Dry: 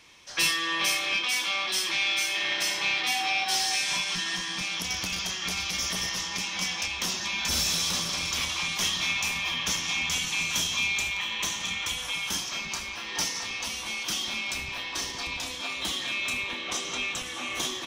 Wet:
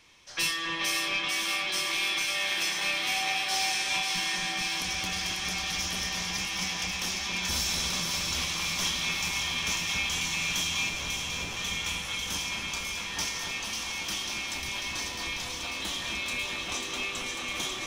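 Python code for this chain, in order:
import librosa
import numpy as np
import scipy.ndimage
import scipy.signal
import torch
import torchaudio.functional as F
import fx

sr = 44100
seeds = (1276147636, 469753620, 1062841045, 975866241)

y = fx.delta_mod(x, sr, bps=16000, step_db=-42.0, at=(10.89, 11.57))
y = fx.low_shelf(y, sr, hz=68.0, db=7.0)
y = fx.echo_alternate(y, sr, ms=272, hz=2300.0, feedback_pct=86, wet_db=-3.5)
y = F.gain(torch.from_numpy(y), -4.0).numpy()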